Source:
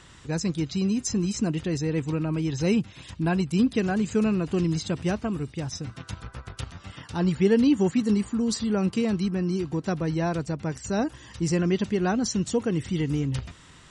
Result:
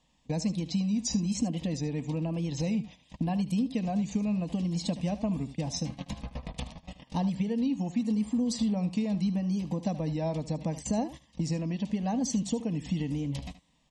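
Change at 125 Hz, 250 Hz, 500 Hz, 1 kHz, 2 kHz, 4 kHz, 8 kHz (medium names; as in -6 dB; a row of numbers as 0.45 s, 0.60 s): -4.0 dB, -4.0 dB, -9.5 dB, -4.5 dB, -12.0 dB, -4.5 dB, -3.5 dB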